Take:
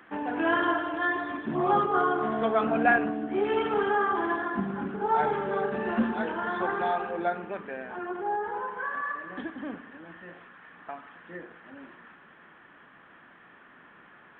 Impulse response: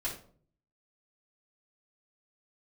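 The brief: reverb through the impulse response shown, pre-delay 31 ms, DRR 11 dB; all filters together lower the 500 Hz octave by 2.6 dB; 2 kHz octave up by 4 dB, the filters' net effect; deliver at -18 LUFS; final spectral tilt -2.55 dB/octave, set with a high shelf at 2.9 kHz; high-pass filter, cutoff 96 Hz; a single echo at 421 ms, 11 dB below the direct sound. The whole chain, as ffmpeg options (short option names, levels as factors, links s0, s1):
-filter_complex "[0:a]highpass=96,equalizer=f=500:t=o:g=-4,equalizer=f=2000:t=o:g=4,highshelf=f=2900:g=4.5,aecho=1:1:421:0.282,asplit=2[s0][s1];[1:a]atrim=start_sample=2205,adelay=31[s2];[s1][s2]afir=irnorm=-1:irlink=0,volume=0.188[s3];[s0][s3]amix=inputs=2:normalize=0,volume=2.82"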